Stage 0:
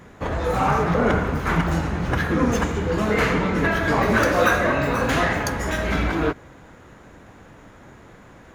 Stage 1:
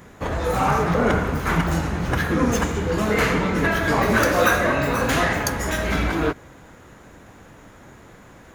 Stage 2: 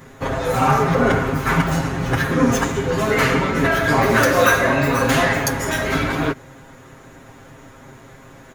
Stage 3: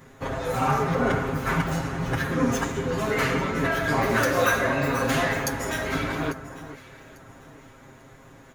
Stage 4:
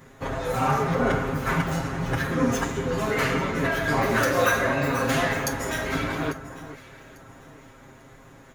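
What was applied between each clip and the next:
high shelf 6700 Hz +9 dB
comb 7.5 ms, depth 82%; gain +1 dB
echo with dull and thin repeats by turns 0.423 s, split 1500 Hz, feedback 54%, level -12.5 dB; gain -7 dB
reverb, pre-delay 5 ms, DRR 13.5 dB

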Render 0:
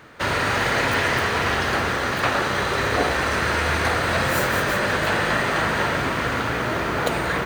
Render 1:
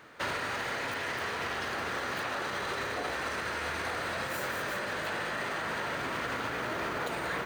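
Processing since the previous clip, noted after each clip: limiter -17 dBFS, peak gain reduction 9 dB; low shelf 160 Hz -10 dB; vocal rider 0.5 s; gain -7.5 dB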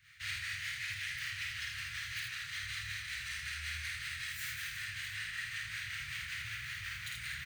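harmonic tremolo 5.3 Hz, depth 70%, crossover 670 Hz; elliptic band-stop 110–2000 Hz, stop band 60 dB; early reflections 51 ms -4 dB, 80 ms -4 dB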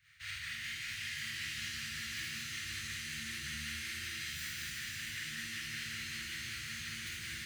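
shimmer reverb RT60 3.6 s, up +7 st, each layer -2 dB, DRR 1.5 dB; gain -4.5 dB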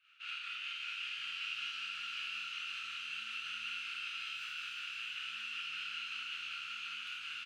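double band-pass 1900 Hz, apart 1 oct; doubler 27 ms -7.5 dB; gain +7.5 dB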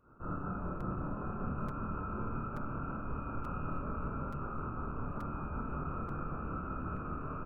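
inverted band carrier 2700 Hz; crackling interface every 0.88 s, samples 256, repeat, from 0.8; gain +7.5 dB

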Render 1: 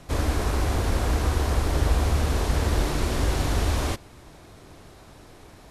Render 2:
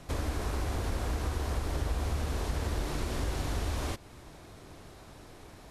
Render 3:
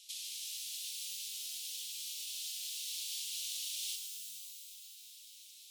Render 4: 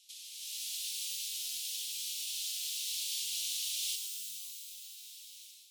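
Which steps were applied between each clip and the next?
compressor 2:1, threshold -31 dBFS, peak gain reduction 8.5 dB; gain -2.5 dB
steep high-pass 2900 Hz 48 dB/oct; shimmer reverb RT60 2.6 s, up +12 st, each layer -2 dB, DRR 4 dB; gain +4 dB
AGC gain up to 10 dB; steep high-pass 1300 Hz 48 dB/oct; gain -6 dB

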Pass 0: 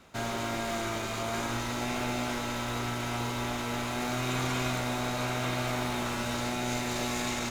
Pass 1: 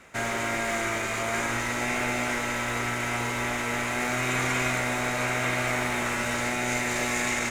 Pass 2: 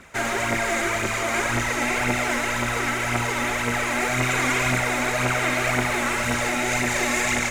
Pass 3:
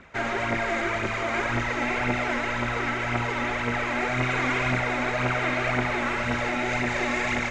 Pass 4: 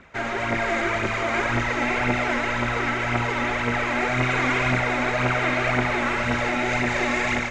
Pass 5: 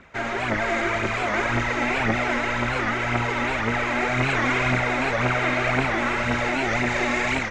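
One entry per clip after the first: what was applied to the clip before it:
graphic EQ 500/2000/4000/8000 Hz +4/+12/-5/+8 dB
phaser 1.9 Hz, delay 3.9 ms, feedback 53%; gain +3 dB
air absorption 170 m; gain -1.5 dB
AGC gain up to 3 dB
record warp 78 rpm, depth 160 cents

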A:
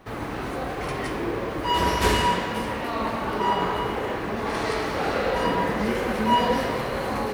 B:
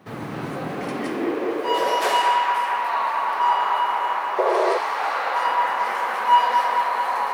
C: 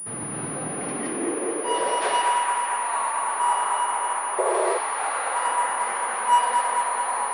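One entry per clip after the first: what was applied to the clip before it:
analogue delay 0.221 s, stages 4096, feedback 77%, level -5 dB; high-pass sweep 150 Hz -> 920 Hz, 0.59–2.44; painted sound noise, 4.38–4.78, 350–730 Hz -19 dBFS; gain -2 dB
pulse-width modulation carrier 9700 Hz; gain -3 dB

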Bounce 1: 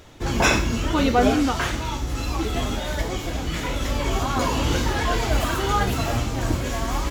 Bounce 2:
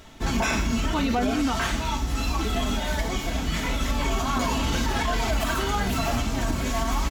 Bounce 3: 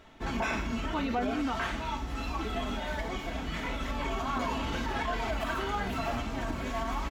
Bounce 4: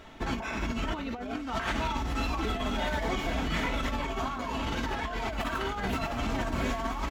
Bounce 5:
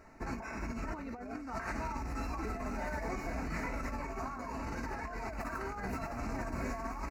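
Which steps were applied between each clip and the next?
bell 460 Hz -8.5 dB 0.28 oct; comb 4.5 ms, depth 48%; limiter -15.5 dBFS, peak gain reduction 11 dB
tone controls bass -5 dB, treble -12 dB; gain -5 dB
negative-ratio compressor -34 dBFS, ratio -0.5; gain +3.5 dB
rattling part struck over -33 dBFS, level -34 dBFS; Butterworth band-stop 3300 Hz, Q 1.5; gain -7 dB

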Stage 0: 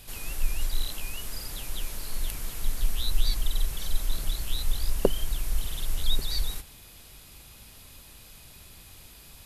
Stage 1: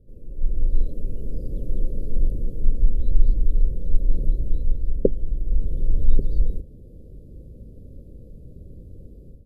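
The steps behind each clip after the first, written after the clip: elliptic low-pass 530 Hz, stop band 40 dB; AGC gain up to 13.5 dB; gain -1 dB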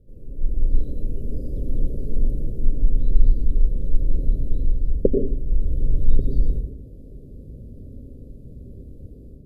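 reverb RT60 0.50 s, pre-delay 85 ms, DRR 3.5 dB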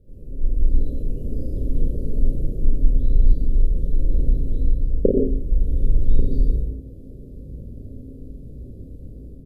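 early reflections 34 ms -4.5 dB, 53 ms -5 dB

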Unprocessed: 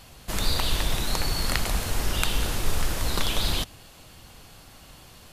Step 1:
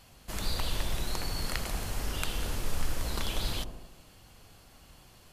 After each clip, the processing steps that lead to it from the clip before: notch 3700 Hz, Q 23; on a send: dark delay 79 ms, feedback 58%, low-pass 820 Hz, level -6 dB; on the sum: gain -8 dB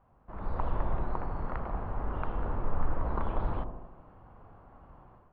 AGC gain up to 10.5 dB; ladder low-pass 1300 Hz, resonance 40%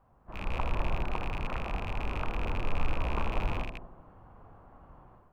rattling part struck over -40 dBFS, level -28 dBFS; pre-echo 32 ms -16 dB

